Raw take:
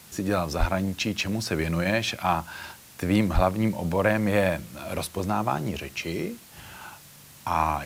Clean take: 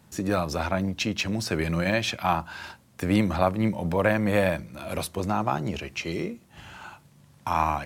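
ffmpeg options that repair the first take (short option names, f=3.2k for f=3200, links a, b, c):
-filter_complex "[0:a]asplit=3[a][b][c];[a]afade=t=out:st=0.59:d=0.02[d];[b]highpass=f=140:w=0.5412,highpass=f=140:w=1.3066,afade=t=in:st=0.59:d=0.02,afade=t=out:st=0.71:d=0.02[e];[c]afade=t=in:st=0.71:d=0.02[f];[d][e][f]amix=inputs=3:normalize=0,asplit=3[g][h][i];[g]afade=t=out:st=3.34:d=0.02[j];[h]highpass=f=140:w=0.5412,highpass=f=140:w=1.3066,afade=t=in:st=3.34:d=0.02,afade=t=out:st=3.46:d=0.02[k];[i]afade=t=in:st=3.46:d=0.02[l];[j][k][l]amix=inputs=3:normalize=0,afwtdn=0.0035"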